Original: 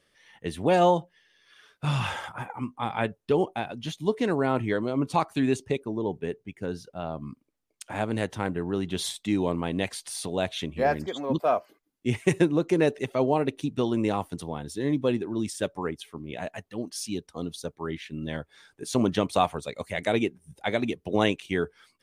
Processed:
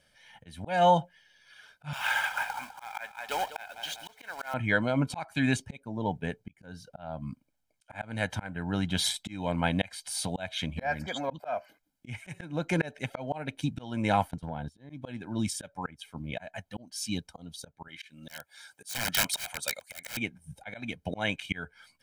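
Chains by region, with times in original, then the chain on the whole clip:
1.93–4.54 s: high-pass 810 Hz + companded quantiser 4-bit + modulated delay 200 ms, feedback 40%, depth 84 cents, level -12 dB
14.31–14.90 s: treble shelf 4 kHz -10.5 dB + gate -39 dBFS, range -18 dB + compression 4:1, threshold -31 dBFS
17.88–20.17 s: high-pass 600 Hz 6 dB/octave + integer overflow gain 26.5 dB + treble shelf 3.9 kHz +9.5 dB
whole clip: dynamic bell 1.9 kHz, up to +8 dB, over -45 dBFS, Q 1.1; comb 1.3 ms, depth 76%; slow attack 357 ms

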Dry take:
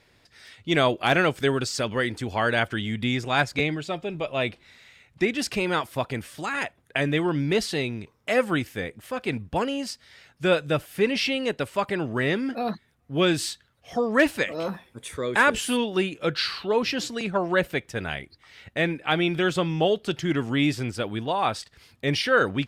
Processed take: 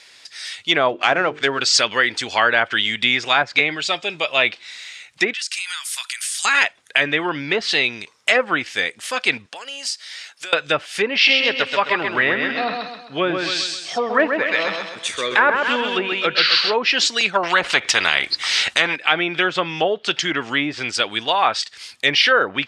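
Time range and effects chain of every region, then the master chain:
0.89–1.60 s: median filter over 9 samples + brick-wall FIR low-pass 9.4 kHz + hum notches 50/100/150/200/250/300/350/400/450 Hz
5.33–6.45 s: high-pass 1.3 kHz 24 dB/octave + peaking EQ 9.8 kHz +11 dB 1.4 oct + compression 8:1, threshold -39 dBFS
9.46–10.53 s: high-pass 390 Hz + compression 5:1, threshold -41 dBFS
11.14–16.74 s: distance through air 84 m + feedback delay 130 ms, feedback 43%, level -5 dB
17.43–18.96 s: bass shelf 130 Hz +8.5 dB + careless resampling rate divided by 2×, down none, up hold + spectrum-flattening compressor 2:1
whole clip: low-pass that closes with the level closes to 1 kHz, closed at -17.5 dBFS; frequency weighting ITU-R 468; loudness maximiser +9.5 dB; trim -1 dB

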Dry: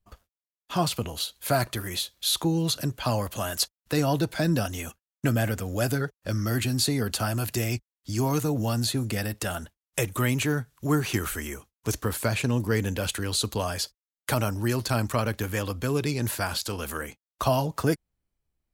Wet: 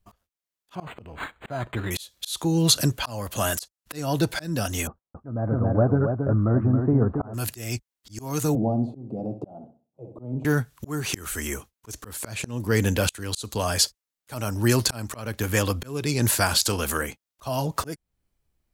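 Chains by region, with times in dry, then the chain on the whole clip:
0.75–1.91 s: treble shelf 8.7 kHz -11 dB + band-stop 1.2 kHz, Q 15 + decimation joined by straight lines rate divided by 8×
4.87–7.34 s: steep low-pass 1.2 kHz + delay 274 ms -6 dB
8.55–10.45 s: elliptic band-pass 130–760 Hz + flutter echo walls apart 10.9 m, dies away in 0.33 s
whole clip: dynamic bell 7.5 kHz, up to +6 dB, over -43 dBFS, Q 0.9; slow attack 415 ms; trim +6 dB

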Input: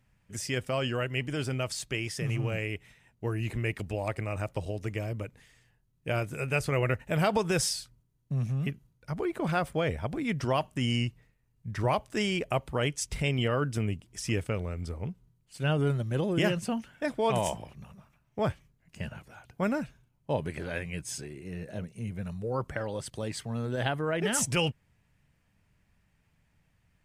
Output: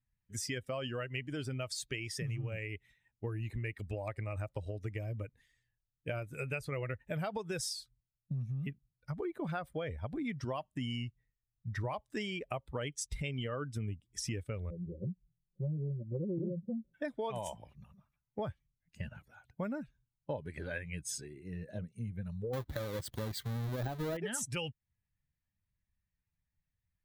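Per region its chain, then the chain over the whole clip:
14.70–16.94 s: steep low-pass 570 Hz 48 dB/octave + comb 5.6 ms, depth 93%
22.53–24.17 s: square wave that keeps the level + de-esser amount 50%
whole clip: expander on every frequency bin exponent 1.5; compression 6:1, threshold -41 dBFS; trim +5.5 dB

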